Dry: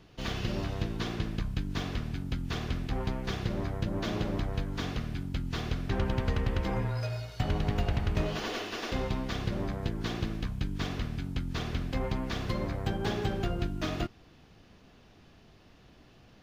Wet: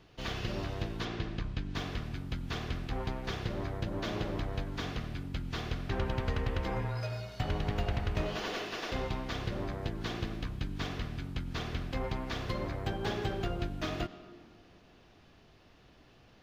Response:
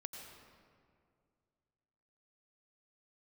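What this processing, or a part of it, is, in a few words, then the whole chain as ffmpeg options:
filtered reverb send: -filter_complex "[0:a]asplit=2[a][b];[b]highpass=f=190:w=0.5412,highpass=f=190:w=1.3066,lowpass=6.2k[c];[1:a]atrim=start_sample=2205[d];[c][d]afir=irnorm=-1:irlink=0,volume=-5dB[e];[a][e]amix=inputs=2:normalize=0,asettb=1/sr,asplit=3[f][g][h];[f]atrim=end=1.054[i];[g]atrim=start=1.05:end=1.75,asetpts=PTS-STARTPTS,afade=t=in:d=0.004:c=qsin,afade=t=out:st=0.696:d=0.004:c=qsin,lowpass=6.1k[j];[h]atrim=start=1.746[k];[i][j]acrossfade=d=0.004:c1=hsin:c2=qsin[l];[l][k]acrossfade=d=0.004:c1=qsin:c2=hsin,volume=-3.5dB"

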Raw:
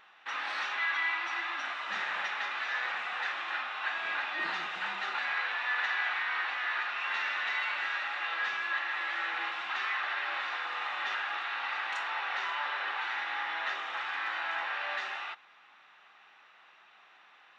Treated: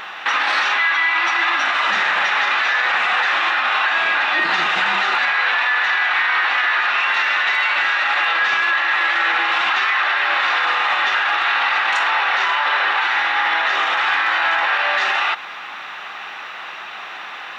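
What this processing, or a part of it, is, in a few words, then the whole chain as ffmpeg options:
loud club master: -filter_complex "[0:a]asettb=1/sr,asplit=3[a][b][c];[a]atrim=end=7.144[d];[b]atrim=start=7.14:end=7.78,asetpts=PTS-STARTPTS,afade=t=in:d=0.004:c=qsin,afade=t=out:st=0.636:d=0.004:c=qsin,highpass=f=230:w=0.5412,highpass=f=230:w=1.3066[e];[c]atrim=start=7.776[f];[d][e]acrossfade=d=0.004:c1=hsin:c2=qsin[g];[g][f]acrossfade=d=0.004:c1=qsin:c2=hsin,acompressor=threshold=-39dB:ratio=2,asoftclip=type=hard:threshold=-27dB,alimiter=level_in=35.5dB:limit=-1dB:release=50:level=0:latency=1,volume=-8.5dB"

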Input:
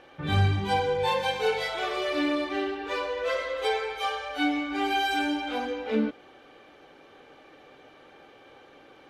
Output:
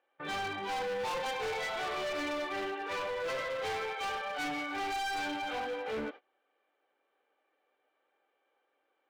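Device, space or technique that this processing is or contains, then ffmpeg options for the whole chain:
walkie-talkie: -af "highpass=480,lowpass=2.9k,asoftclip=type=hard:threshold=-33dB,agate=range=-23dB:threshold=-46dB:ratio=16:detection=peak"

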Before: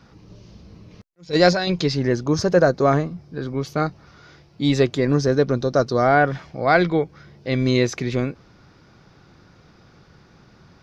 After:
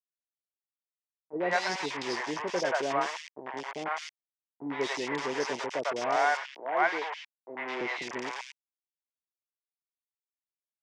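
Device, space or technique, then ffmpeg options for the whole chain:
hand-held game console: -filter_complex "[0:a]acrusher=bits=3:mix=0:aa=0.000001,highpass=490,equalizer=f=520:t=q:w=4:g=-5,equalizer=f=930:t=q:w=4:g=8,equalizer=f=1.3k:t=q:w=4:g=-5,equalizer=f=2k:t=q:w=4:g=5,equalizer=f=4.1k:t=q:w=4:g=-10,lowpass=f=5.6k:w=0.5412,lowpass=f=5.6k:w=1.3066,asettb=1/sr,asplit=3[a][b][c];[a]atrim=end=6.164[d];[b]atrim=start=6.16:end=7.81,asetpts=PTS-STARTPTS,afade=t=in:d=0.004:c=qsin,afade=t=out:st=1.646:d=0.004:c=qsin,acrossover=split=330 4300:gain=0.158 1 0.141[e][f][g];[e][f][g]amix=inputs=3:normalize=0[h];[c]atrim=start=7.806[i];[d][h]acrossfade=d=0.004:c1=hsin:c2=qsin[j];[j][i]acrossfade=d=0.004:c1=qsin:c2=hsin,acrossover=split=610|2400[k][l][m];[l]adelay=100[n];[m]adelay=210[o];[k][n][o]amix=inputs=3:normalize=0,volume=-6dB"

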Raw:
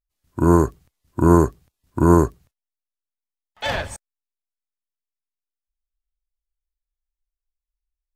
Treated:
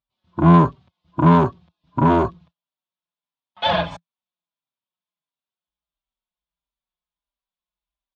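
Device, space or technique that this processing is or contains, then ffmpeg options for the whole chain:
barber-pole flanger into a guitar amplifier: -filter_complex "[0:a]asplit=2[a][b];[b]adelay=4.6,afreqshift=-1.5[c];[a][c]amix=inputs=2:normalize=1,asoftclip=type=tanh:threshold=-19.5dB,highpass=100,equalizer=f=170:t=q:w=4:g=10,equalizer=f=430:t=q:w=4:g=-5,equalizer=f=650:t=q:w=4:g=4,equalizer=f=1k:t=q:w=4:g=8,equalizer=f=1.9k:t=q:w=4:g=-6,equalizer=f=3.5k:t=q:w=4:g=6,lowpass=f=4.1k:w=0.5412,lowpass=f=4.1k:w=1.3066,volume=7dB"

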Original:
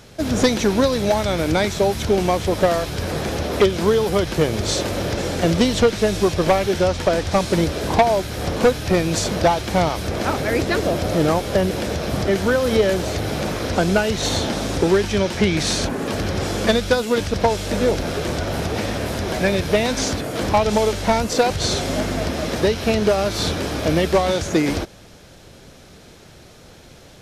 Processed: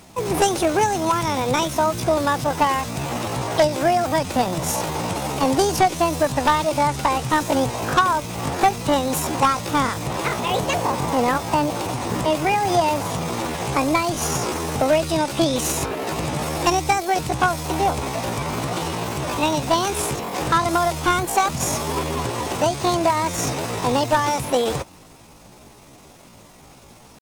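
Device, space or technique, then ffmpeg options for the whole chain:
chipmunk voice: -af "asetrate=70004,aresample=44100,atempo=0.629961,volume=-1.5dB"

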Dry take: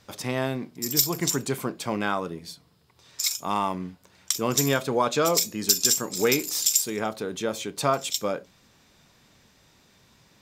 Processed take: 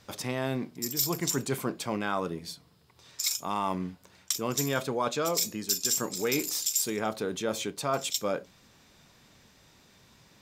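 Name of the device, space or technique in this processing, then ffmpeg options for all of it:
compression on the reversed sound: -af "areverse,acompressor=threshold=-25dB:ratio=5,areverse"

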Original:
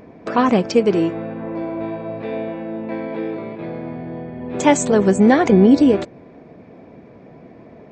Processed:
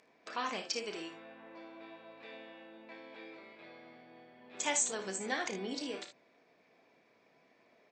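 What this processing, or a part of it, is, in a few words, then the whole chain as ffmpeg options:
piezo pickup straight into a mixer: -af "lowpass=6.5k,aderivative,aecho=1:1:31|57|76:0.316|0.316|0.224,volume=-2.5dB"

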